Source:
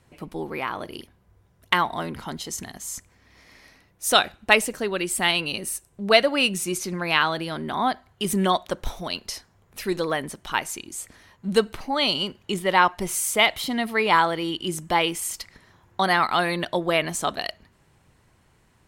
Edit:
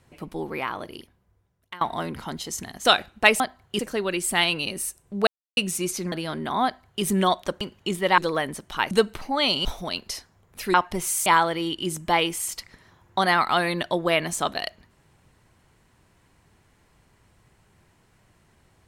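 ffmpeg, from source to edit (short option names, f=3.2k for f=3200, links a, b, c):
-filter_complex "[0:a]asplit=14[a][b][c][d][e][f][g][h][i][j][k][l][m][n];[a]atrim=end=1.81,asetpts=PTS-STARTPTS,afade=t=out:st=0.58:d=1.23:silence=0.0668344[o];[b]atrim=start=1.81:end=2.852,asetpts=PTS-STARTPTS,afade=t=in:d=0.004:c=hsin:silence=0.0668344[p];[c]atrim=start=4.108:end=4.662[q];[d]atrim=start=7.868:end=8.262[r];[e]atrim=start=4.658:end=6.14,asetpts=PTS-STARTPTS,afade=t=out:st=1.478:d=0.004:c=hsin[s];[f]atrim=start=6.14:end=6.44,asetpts=PTS-STARTPTS,volume=0[t];[g]atrim=start=6.44:end=6.992,asetpts=PTS-STARTPTS,afade=t=in:d=0.004:c=hsin[u];[h]atrim=start=7.348:end=8.842[v];[i]atrim=start=12.238:end=12.812[w];[j]atrim=start=9.928:end=10.662[x];[k]atrim=start=11.498:end=12.242[y];[l]atrim=start=8.838:end=9.932[z];[m]atrim=start=12.808:end=13.332[aa];[n]atrim=start=14.078[ab];[o][p]concat=n=2:v=0:a=1[ac];[ac][q]acrossfade=d=0.004:c1=hsin:c2=hsin[ad];[ad][r]acrossfade=d=0.004:c1=hsin:c2=hsin[ae];[s][t][u]concat=n=3:v=0:a=1[af];[ae][af]acrossfade=d=0.004:c1=hsin:c2=hsin[ag];[ag][v]acrossfade=d=0.004:c1=hsin:c2=hsin[ah];[ah][w]acrossfade=d=0.004:c1=hsin:c2=hsin[ai];[ai][x]acrossfade=d=0.004:c1=hsin:c2=hsin[aj];[aj][y]acrossfade=d=0.004:c1=hsin:c2=hsin[ak];[ak][z]acrossfade=d=0.004:c1=hsin:c2=hsin[al];[al][aa]acrossfade=d=0.004:c1=hsin:c2=hsin[am];[am][ab]acrossfade=d=0.004:c1=hsin:c2=hsin"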